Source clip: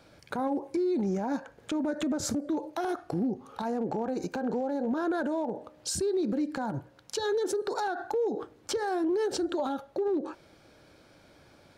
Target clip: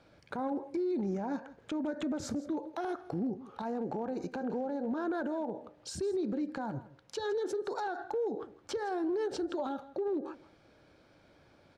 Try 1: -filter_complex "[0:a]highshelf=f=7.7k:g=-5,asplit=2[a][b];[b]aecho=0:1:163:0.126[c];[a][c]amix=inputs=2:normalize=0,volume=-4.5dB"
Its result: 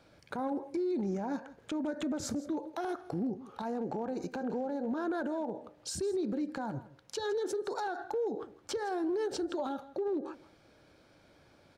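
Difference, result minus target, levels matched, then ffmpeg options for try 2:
8000 Hz band +4.5 dB
-filter_complex "[0:a]highshelf=f=7.7k:g=-15.5,asplit=2[a][b];[b]aecho=0:1:163:0.126[c];[a][c]amix=inputs=2:normalize=0,volume=-4.5dB"

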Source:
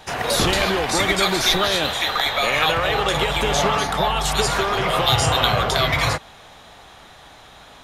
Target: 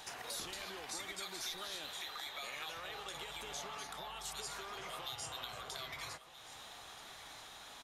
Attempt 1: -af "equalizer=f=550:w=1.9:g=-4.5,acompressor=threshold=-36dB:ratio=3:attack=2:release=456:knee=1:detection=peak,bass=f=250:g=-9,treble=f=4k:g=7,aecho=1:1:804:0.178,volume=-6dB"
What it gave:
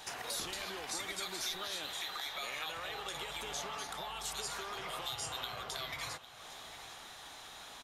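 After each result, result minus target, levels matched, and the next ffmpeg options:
echo 0.474 s early; compressor: peak gain reduction -4 dB
-af "equalizer=f=550:w=1.9:g=-4.5,acompressor=threshold=-36dB:ratio=3:attack=2:release=456:knee=1:detection=peak,bass=f=250:g=-9,treble=f=4k:g=7,aecho=1:1:1278:0.178,volume=-6dB"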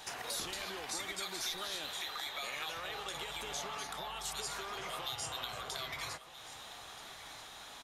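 compressor: peak gain reduction -4 dB
-af "equalizer=f=550:w=1.9:g=-4.5,acompressor=threshold=-42dB:ratio=3:attack=2:release=456:knee=1:detection=peak,bass=f=250:g=-9,treble=f=4k:g=7,aecho=1:1:1278:0.178,volume=-6dB"

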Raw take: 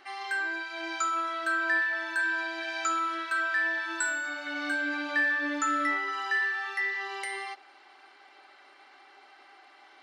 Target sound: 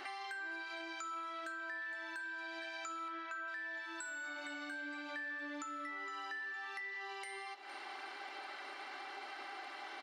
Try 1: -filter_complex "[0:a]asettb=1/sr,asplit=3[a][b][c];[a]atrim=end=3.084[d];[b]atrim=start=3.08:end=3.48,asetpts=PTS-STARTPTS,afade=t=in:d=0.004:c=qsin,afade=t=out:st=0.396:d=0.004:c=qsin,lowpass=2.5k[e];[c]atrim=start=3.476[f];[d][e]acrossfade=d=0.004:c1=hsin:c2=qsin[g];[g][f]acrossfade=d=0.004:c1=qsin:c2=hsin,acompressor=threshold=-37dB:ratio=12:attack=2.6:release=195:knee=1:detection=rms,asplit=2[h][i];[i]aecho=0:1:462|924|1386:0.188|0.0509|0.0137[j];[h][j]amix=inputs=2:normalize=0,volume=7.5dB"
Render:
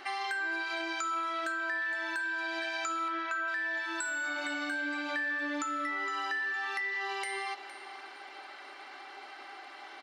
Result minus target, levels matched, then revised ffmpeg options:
compressor: peak gain reduction -10 dB
-filter_complex "[0:a]asettb=1/sr,asplit=3[a][b][c];[a]atrim=end=3.084[d];[b]atrim=start=3.08:end=3.48,asetpts=PTS-STARTPTS,afade=t=in:d=0.004:c=qsin,afade=t=out:st=0.396:d=0.004:c=qsin,lowpass=2.5k[e];[c]atrim=start=3.476[f];[d][e]acrossfade=d=0.004:c1=hsin:c2=qsin[g];[g][f]acrossfade=d=0.004:c1=qsin:c2=hsin,acompressor=threshold=-48dB:ratio=12:attack=2.6:release=195:knee=1:detection=rms,asplit=2[h][i];[i]aecho=0:1:462|924|1386:0.188|0.0509|0.0137[j];[h][j]amix=inputs=2:normalize=0,volume=7.5dB"

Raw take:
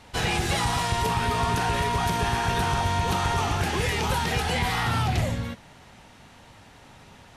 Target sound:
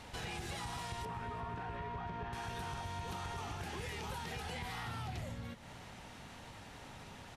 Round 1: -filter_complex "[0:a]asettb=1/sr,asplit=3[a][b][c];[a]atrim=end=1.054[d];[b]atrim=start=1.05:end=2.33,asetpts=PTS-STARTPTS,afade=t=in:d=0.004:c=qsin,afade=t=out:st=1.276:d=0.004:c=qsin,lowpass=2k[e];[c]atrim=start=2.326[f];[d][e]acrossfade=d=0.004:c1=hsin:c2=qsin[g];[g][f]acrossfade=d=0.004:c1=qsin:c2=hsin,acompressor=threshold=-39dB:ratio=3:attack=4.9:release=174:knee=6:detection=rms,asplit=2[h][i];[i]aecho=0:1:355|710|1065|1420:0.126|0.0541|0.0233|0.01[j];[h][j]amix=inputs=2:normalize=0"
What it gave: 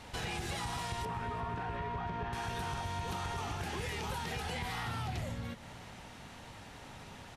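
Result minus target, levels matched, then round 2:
compressor: peak gain reduction -4.5 dB
-filter_complex "[0:a]asettb=1/sr,asplit=3[a][b][c];[a]atrim=end=1.054[d];[b]atrim=start=1.05:end=2.33,asetpts=PTS-STARTPTS,afade=t=in:d=0.004:c=qsin,afade=t=out:st=1.276:d=0.004:c=qsin,lowpass=2k[e];[c]atrim=start=2.326[f];[d][e]acrossfade=d=0.004:c1=hsin:c2=qsin[g];[g][f]acrossfade=d=0.004:c1=qsin:c2=hsin,acompressor=threshold=-45.5dB:ratio=3:attack=4.9:release=174:knee=6:detection=rms,asplit=2[h][i];[i]aecho=0:1:355|710|1065|1420:0.126|0.0541|0.0233|0.01[j];[h][j]amix=inputs=2:normalize=0"

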